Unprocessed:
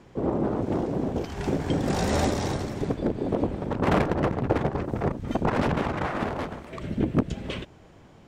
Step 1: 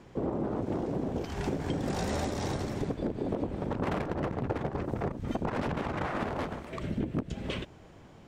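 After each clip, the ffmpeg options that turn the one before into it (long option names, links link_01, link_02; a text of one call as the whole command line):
ffmpeg -i in.wav -af "acompressor=threshold=-27dB:ratio=6,volume=-1dB" out.wav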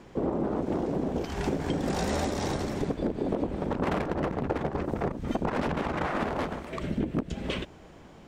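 ffmpeg -i in.wav -af "equalizer=frequency=110:width_type=o:width=0.4:gain=-9.5,volume=3.5dB" out.wav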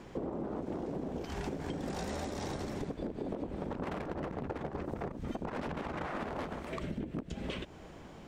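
ffmpeg -i in.wav -af "acompressor=threshold=-36dB:ratio=4" out.wav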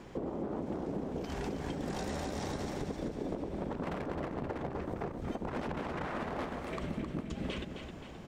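ffmpeg -i in.wav -af "aecho=1:1:263|526|789|1052|1315|1578:0.422|0.211|0.105|0.0527|0.0264|0.0132" out.wav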